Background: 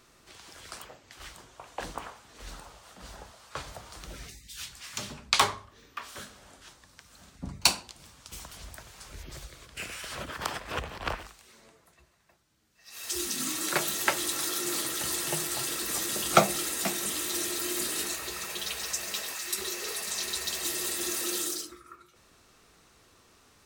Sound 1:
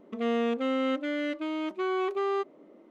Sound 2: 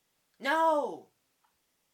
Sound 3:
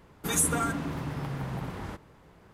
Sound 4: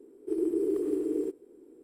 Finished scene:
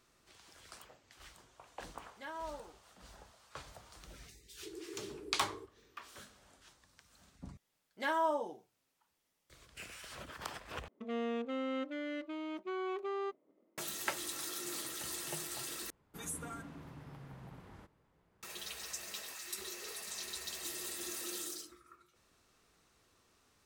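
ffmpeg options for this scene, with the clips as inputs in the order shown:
ffmpeg -i bed.wav -i cue0.wav -i cue1.wav -i cue2.wav -i cue3.wav -filter_complex "[2:a]asplit=2[link_01][link_02];[0:a]volume=-10.5dB[link_03];[4:a]highpass=450[link_04];[1:a]agate=range=-10dB:threshold=-49dB:ratio=3:release=35:detection=peak[link_05];[link_03]asplit=4[link_06][link_07][link_08][link_09];[link_06]atrim=end=7.574[link_10];[link_02]atrim=end=1.93,asetpts=PTS-STARTPTS,volume=-6dB[link_11];[link_07]atrim=start=9.496:end=10.884[link_12];[link_05]atrim=end=2.9,asetpts=PTS-STARTPTS,volume=-9.5dB[link_13];[link_08]atrim=start=13.776:end=15.904[link_14];[3:a]atrim=end=2.53,asetpts=PTS-STARTPTS,volume=-17dB[link_15];[link_09]atrim=start=18.426[link_16];[link_01]atrim=end=1.93,asetpts=PTS-STARTPTS,volume=-17.5dB,afade=type=in:duration=0.004:curve=hsin,afade=type=out:start_time=1.926:duration=0.004:curve=hsin,adelay=1760[link_17];[link_04]atrim=end=1.83,asetpts=PTS-STARTPTS,volume=-14dB,afade=type=in:duration=0.004:curve=hsin,afade=type=out:start_time=1.826:duration=0.004:curve=hsin,adelay=4350[link_18];[link_10][link_11]acrossfade=duration=0.004:curve1=hsin:curve2=hsin[link_19];[link_19][link_12]acrossfade=duration=0.004:curve1=hsin:curve2=hsin[link_20];[link_20][link_13]acrossfade=duration=0.004:curve1=hsin:curve2=hsin[link_21];[link_21][link_14]acrossfade=duration=0.004:curve1=hsin:curve2=hsin[link_22];[link_22][link_15]acrossfade=duration=0.004:curve1=hsin:curve2=hsin[link_23];[link_23][link_16]acrossfade=duration=0.004:curve1=hsin:curve2=hsin[link_24];[link_24][link_17][link_18]amix=inputs=3:normalize=0" out.wav

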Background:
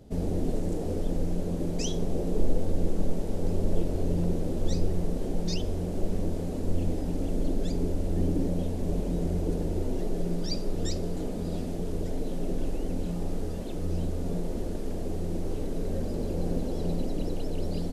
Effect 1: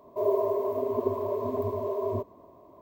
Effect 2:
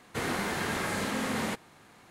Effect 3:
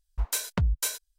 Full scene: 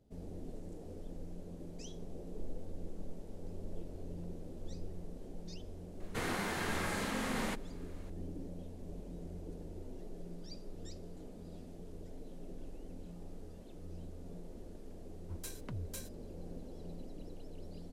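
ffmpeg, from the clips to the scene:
ffmpeg -i bed.wav -i cue0.wav -i cue1.wav -i cue2.wav -filter_complex "[0:a]volume=-17.5dB[link_01];[3:a]afreqshift=34[link_02];[2:a]atrim=end=2.1,asetpts=PTS-STARTPTS,volume=-5.5dB,afade=type=in:duration=0.004:curve=hsin,afade=type=out:start_time=2.096:duration=0.004:curve=hsin,adelay=6000[link_03];[link_02]atrim=end=1.18,asetpts=PTS-STARTPTS,volume=-18dB,afade=type=in:duration=0.004:curve=hsin,afade=type=out:start_time=1.176:duration=0.004:curve=hsin,adelay=15110[link_04];[link_01][link_03][link_04]amix=inputs=3:normalize=0" out.wav

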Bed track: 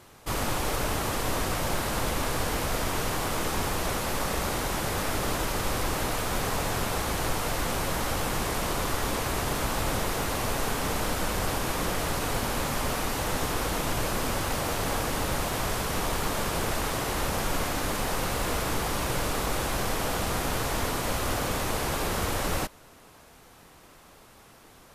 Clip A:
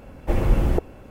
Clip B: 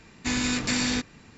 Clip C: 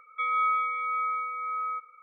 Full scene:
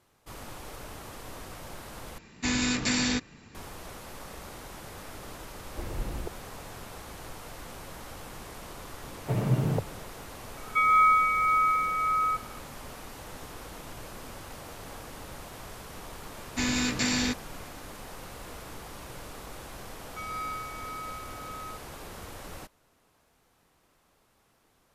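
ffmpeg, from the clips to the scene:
ffmpeg -i bed.wav -i cue0.wav -i cue1.wav -i cue2.wav -filter_complex "[2:a]asplit=2[link_01][link_02];[1:a]asplit=2[link_03][link_04];[3:a]asplit=2[link_05][link_06];[0:a]volume=-14.5dB[link_07];[link_04]afreqshift=93[link_08];[link_05]equalizer=frequency=1700:width_type=o:width=0.7:gain=13.5[link_09];[link_06]adynamicsmooth=sensitivity=4:basefreq=1400[link_10];[link_07]asplit=2[link_11][link_12];[link_11]atrim=end=2.184[link_13];[link_01]atrim=end=1.37,asetpts=PTS-STARTPTS,volume=-1dB[link_14];[link_12]atrim=start=3.546[link_15];[link_03]atrim=end=1.1,asetpts=PTS-STARTPTS,volume=-15.5dB,afade=type=in:duration=0.004:curve=hsin,afade=type=out:start_time=1.096:duration=0.004:curve=hsin,adelay=242109S[link_16];[link_08]atrim=end=1.1,asetpts=PTS-STARTPTS,volume=-8dB,afade=type=in:duration=0.004:curve=hsin,afade=type=out:start_time=1.096:duration=0.004:curve=hsin,adelay=9000[link_17];[link_09]atrim=end=2.02,asetpts=PTS-STARTPTS,volume=-0.5dB,afade=type=in:duration=0.004:curve=hsin,afade=type=out:start_time=2.016:duration=0.004:curve=hsin,adelay=10570[link_18];[link_02]atrim=end=1.37,asetpts=PTS-STARTPTS,volume=-1.5dB,afade=type=in:duration=0.004:curve=hsin,afade=type=out:start_time=1.366:duration=0.004:curve=hsin,adelay=16320[link_19];[link_10]atrim=end=2.02,asetpts=PTS-STARTPTS,volume=-10dB,afade=type=in:duration=0.004:curve=hsin,afade=type=out:start_time=2.016:duration=0.004:curve=hsin,adelay=19980[link_20];[link_13][link_14]acrossfade=duration=0.004:curve1=hsin:curve2=hsin[link_21];[link_21][link_15]acrossfade=duration=0.004:curve1=hsin:curve2=hsin[link_22];[link_22][link_16][link_17][link_18][link_19][link_20]amix=inputs=6:normalize=0" out.wav

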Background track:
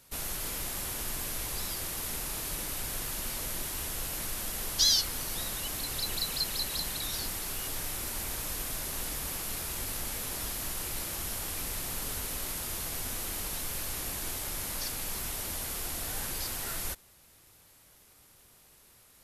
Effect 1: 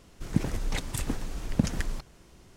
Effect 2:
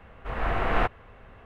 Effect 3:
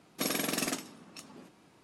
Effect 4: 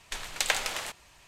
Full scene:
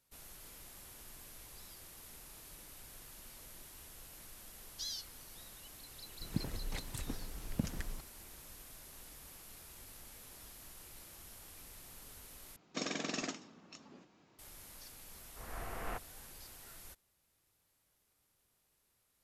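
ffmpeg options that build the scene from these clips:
ffmpeg -i bed.wav -i cue0.wav -i cue1.wav -i cue2.wav -filter_complex "[0:a]volume=-18dB[link_01];[3:a]aresample=16000,aresample=44100[link_02];[link_01]asplit=2[link_03][link_04];[link_03]atrim=end=12.564[link_05];[link_02]atrim=end=1.83,asetpts=PTS-STARTPTS,volume=-6dB[link_06];[link_04]atrim=start=14.386[link_07];[1:a]atrim=end=2.56,asetpts=PTS-STARTPTS,volume=-11dB,afade=type=in:duration=0.004:curve=hsin,afade=type=out:start_time=2.556:duration=0.004:curve=hsin,adelay=6000[link_08];[2:a]atrim=end=1.45,asetpts=PTS-STARTPTS,volume=-17.5dB,afade=type=in:duration=0.004:curve=hsin,afade=type=out:start_time=1.446:duration=0.004:curve=hsin,adelay=15110[link_09];[link_05][link_06]acrossfade=duration=0.004:curve1=hsin:curve2=hsin[link_10];[link_10][link_07]acrossfade=duration=0.004:curve1=hsin:curve2=hsin[link_11];[link_11][link_08][link_09]amix=inputs=3:normalize=0" out.wav

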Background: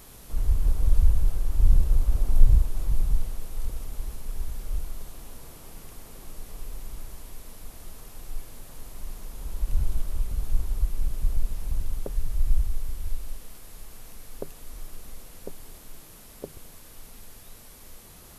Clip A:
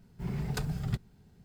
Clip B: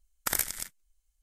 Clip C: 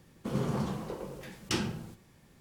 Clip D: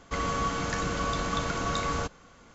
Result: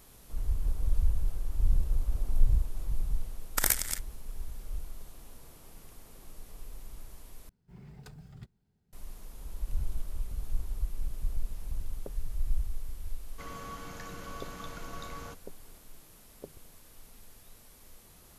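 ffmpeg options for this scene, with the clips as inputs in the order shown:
ffmpeg -i bed.wav -i cue0.wav -i cue1.wav -i cue2.wav -i cue3.wav -filter_complex "[0:a]volume=-7.5dB[link_01];[2:a]dynaudnorm=framelen=100:gausssize=5:maxgain=11.5dB[link_02];[link_01]asplit=2[link_03][link_04];[link_03]atrim=end=7.494[link_05];[1:a]atrim=end=1.44,asetpts=PTS-STARTPTS,volume=-16dB[link_06];[link_04]atrim=start=8.926[link_07];[link_02]atrim=end=1.22,asetpts=PTS-STARTPTS,volume=-3dB,afade=type=in:duration=0.004:curve=hsin,afade=type=out:start_time=1.216:duration=0.004:curve=hsin,adelay=3310[link_08];[4:a]atrim=end=2.54,asetpts=PTS-STARTPTS,volume=-14dB,afade=type=in:duration=0.004:curve=hsin,afade=type=out:start_time=2.536:duration=0.004:curve=hsin,adelay=13270[link_09];[link_05][link_06]acrossfade=duration=0.004:curve1=hsin:curve2=hsin[link_10];[link_10][link_07]acrossfade=duration=0.004:curve1=hsin:curve2=hsin[link_11];[link_11][link_08][link_09]amix=inputs=3:normalize=0" out.wav

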